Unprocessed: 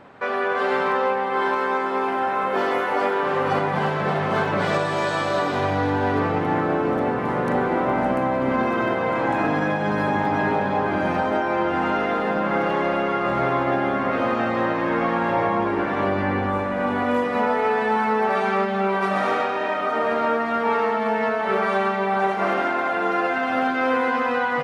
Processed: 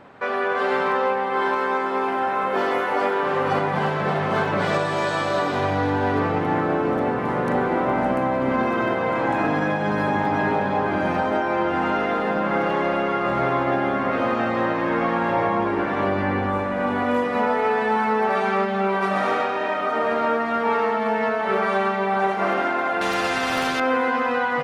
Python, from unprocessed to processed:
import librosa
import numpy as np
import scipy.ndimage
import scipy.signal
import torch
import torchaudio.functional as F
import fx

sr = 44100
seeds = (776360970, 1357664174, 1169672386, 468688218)

y = fx.spectral_comp(x, sr, ratio=2.0, at=(23.01, 23.8))